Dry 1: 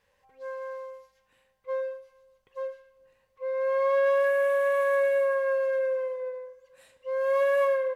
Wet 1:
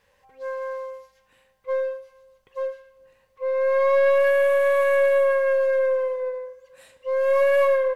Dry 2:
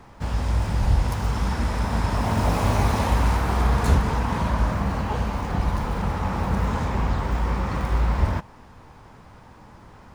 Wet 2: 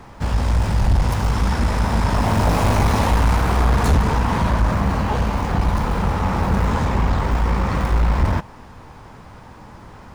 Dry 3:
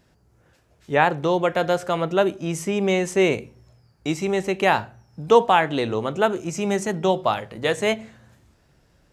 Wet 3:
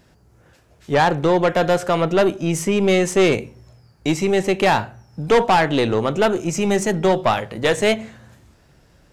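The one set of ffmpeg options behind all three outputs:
-af "aeval=exprs='(tanh(7.08*val(0)+0.3)-tanh(0.3))/7.08':c=same,volume=7dB"

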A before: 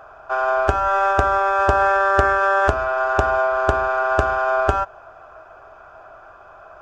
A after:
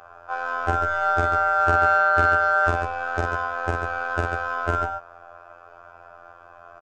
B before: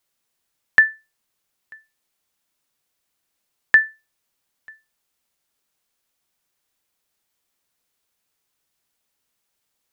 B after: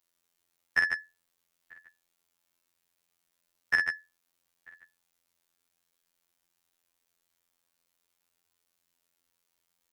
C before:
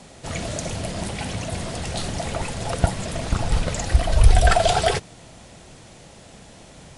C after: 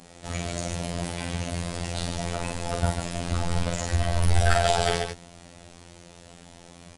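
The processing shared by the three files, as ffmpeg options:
-af "asoftclip=type=tanh:threshold=-6.5dB,aecho=1:1:46.65|142.9:0.631|0.501,afftfilt=real='hypot(re,im)*cos(PI*b)':imag='0':win_size=2048:overlap=0.75,volume=-1.5dB"

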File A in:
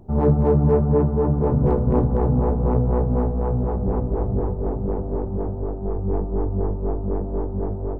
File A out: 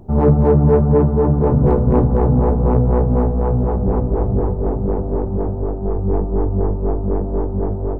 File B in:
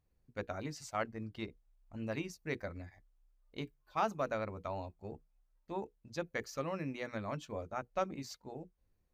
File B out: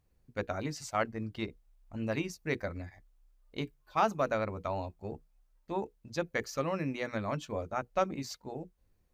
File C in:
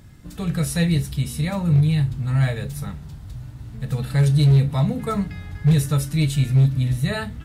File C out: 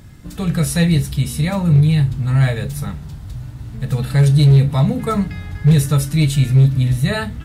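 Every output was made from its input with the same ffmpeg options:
-af "acontrast=34"

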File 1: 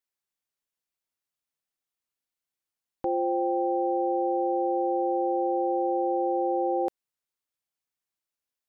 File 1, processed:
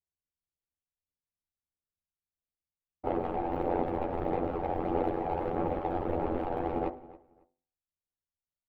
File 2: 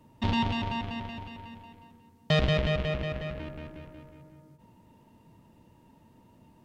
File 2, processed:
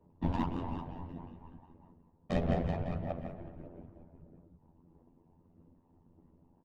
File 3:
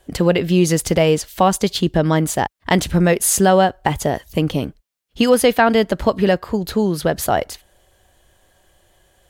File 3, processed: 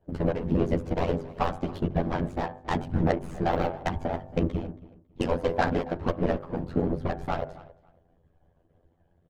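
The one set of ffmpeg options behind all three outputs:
-filter_complex "[0:a]aeval=exprs='if(lt(val(0),0),0.251*val(0),val(0))':c=same,afftfilt=real='hypot(re,im)*cos(2*PI*random(0))':imag='hypot(re,im)*sin(2*PI*random(1))':win_size=512:overlap=0.75,lowshelf=f=110:g=-4.5,bandreject=f=50.53:t=h:w=4,bandreject=f=101.06:t=h:w=4,bandreject=f=151.59:t=h:w=4,bandreject=f=202.12:t=h:w=4,bandreject=f=252.65:t=h:w=4,bandreject=f=303.18:t=h:w=4,bandreject=f=353.71:t=h:w=4,bandreject=f=404.24:t=h:w=4,bandreject=f=454.77:t=h:w=4,bandreject=f=505.3:t=h:w=4,bandreject=f=555.83:t=h:w=4,bandreject=f=606.36:t=h:w=4,bandreject=f=656.89:t=h:w=4,bandreject=f=707.42:t=h:w=4,bandreject=f=757.95:t=h:w=4,bandreject=f=808.48:t=h:w=4,bandreject=f=859.01:t=h:w=4,bandreject=f=909.54:t=h:w=4,bandreject=f=960.07:t=h:w=4,bandreject=f=1.0106k:t=h:w=4,bandreject=f=1.06113k:t=h:w=4,bandreject=f=1.11166k:t=h:w=4,bandreject=f=1.16219k:t=h:w=4,bandreject=f=1.21272k:t=h:w=4,bandreject=f=1.26325k:t=h:w=4,bandreject=f=1.31378k:t=h:w=4,bandreject=f=1.36431k:t=h:w=4,bandreject=f=1.41484k:t=h:w=4,bandreject=f=1.46537k:t=h:w=4,bandreject=f=1.5159k:t=h:w=4,bandreject=f=1.56643k:t=h:w=4,bandreject=f=1.61696k:t=h:w=4,bandreject=f=1.66749k:t=h:w=4,bandreject=f=1.71802k:t=h:w=4,bandreject=f=1.76855k:t=h:w=4,bandreject=f=1.81908k:t=h:w=4,acompressor=threshold=-31dB:ratio=2.5,tremolo=f=89:d=0.667,adynamicsmooth=sensitivity=2:basefreq=640,aphaser=in_gain=1:out_gain=1:delay=1.3:decay=0.26:speed=1.6:type=sinusoidal,aemphasis=mode=production:type=50kf,asplit=2[a][b];[b]adelay=12,volume=-2dB[c];[a][c]amix=inputs=2:normalize=0,asplit=2[d][e];[e]adelay=275,lowpass=f=3.3k:p=1,volume=-19dB,asplit=2[f][g];[g]adelay=275,lowpass=f=3.3k:p=1,volume=0.21[h];[f][h]amix=inputs=2:normalize=0[i];[d][i]amix=inputs=2:normalize=0,volume=6.5dB"

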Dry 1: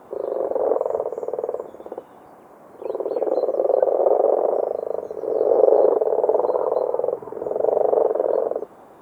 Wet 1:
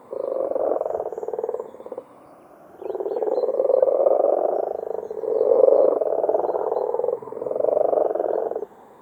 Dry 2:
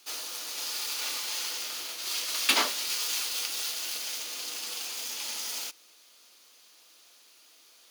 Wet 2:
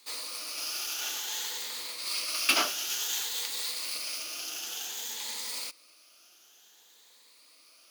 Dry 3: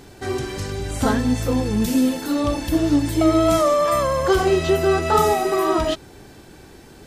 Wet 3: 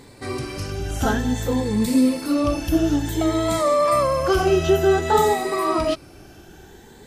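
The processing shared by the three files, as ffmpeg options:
-af "afftfilt=real='re*pow(10,8/40*sin(2*PI*(0.98*log(max(b,1)*sr/1024/100)/log(2)-(0.55)*(pts-256)/sr)))':imag='im*pow(10,8/40*sin(2*PI*(0.98*log(max(b,1)*sr/1024/100)/log(2)-(0.55)*(pts-256)/sr)))':win_size=1024:overlap=0.75,volume=-2dB"

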